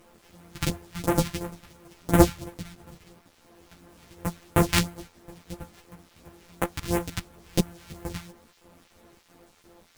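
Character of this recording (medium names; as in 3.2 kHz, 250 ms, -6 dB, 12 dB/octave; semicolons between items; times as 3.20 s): a buzz of ramps at a fixed pitch in blocks of 256 samples; phasing stages 2, 2.9 Hz, lowest notch 420–4600 Hz; a quantiser's noise floor 10-bit, dither none; a shimmering, thickened sound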